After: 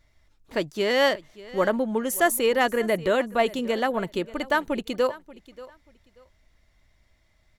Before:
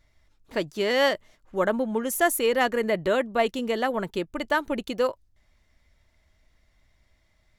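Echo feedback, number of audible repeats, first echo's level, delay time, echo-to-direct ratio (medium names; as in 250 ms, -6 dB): 23%, 2, -19.0 dB, 584 ms, -19.0 dB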